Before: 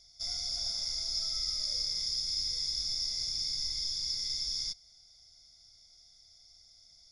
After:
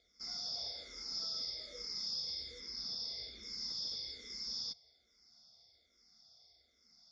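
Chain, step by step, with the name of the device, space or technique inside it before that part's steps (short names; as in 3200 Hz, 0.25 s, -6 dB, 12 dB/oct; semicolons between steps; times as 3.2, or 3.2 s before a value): 2.6–3.43 LPF 5500 Hz 24 dB/oct; barber-pole phaser into a guitar amplifier (endless phaser -1.2 Hz; soft clip -27 dBFS, distortion -22 dB; speaker cabinet 87–4600 Hz, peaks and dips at 91 Hz -10 dB, 130 Hz -6 dB, 230 Hz +8 dB, 470 Hz +9 dB, 1200 Hz +4 dB, 2800 Hz -7 dB); gain +1.5 dB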